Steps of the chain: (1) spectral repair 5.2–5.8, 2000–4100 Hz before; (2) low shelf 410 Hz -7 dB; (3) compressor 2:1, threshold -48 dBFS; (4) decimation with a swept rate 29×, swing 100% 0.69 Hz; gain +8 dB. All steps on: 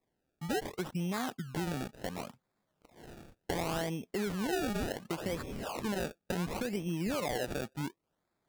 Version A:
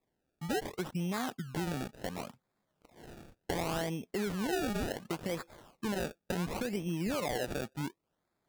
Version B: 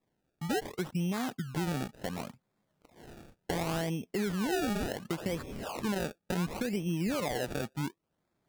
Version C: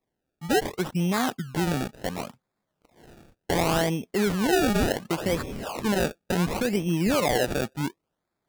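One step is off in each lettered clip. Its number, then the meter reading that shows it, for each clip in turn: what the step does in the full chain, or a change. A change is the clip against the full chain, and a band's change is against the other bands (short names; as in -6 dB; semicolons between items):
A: 1, momentary loudness spread change +1 LU; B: 2, 125 Hz band +2.0 dB; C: 3, mean gain reduction 8.5 dB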